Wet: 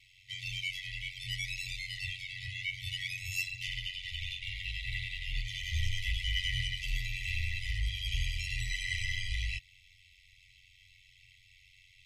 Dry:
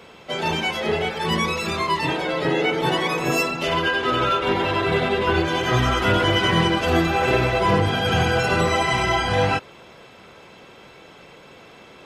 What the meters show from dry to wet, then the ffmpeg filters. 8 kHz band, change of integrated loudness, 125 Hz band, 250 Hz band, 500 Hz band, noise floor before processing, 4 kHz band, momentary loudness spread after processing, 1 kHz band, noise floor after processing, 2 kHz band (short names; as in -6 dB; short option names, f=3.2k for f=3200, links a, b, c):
-10.5 dB, -15.0 dB, -14.0 dB, under -35 dB, under -40 dB, -46 dBFS, -10.5 dB, 5 LU, under -40 dB, -62 dBFS, -13.0 dB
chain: -af "aeval=exprs='val(0)*sin(2*PI*46*n/s)':c=same,asubboost=boost=2:cutoff=81,afftfilt=real='re*(1-between(b*sr/4096,120,1900))':imag='im*(1-between(b*sr/4096,120,1900))':win_size=4096:overlap=0.75,volume=-7.5dB"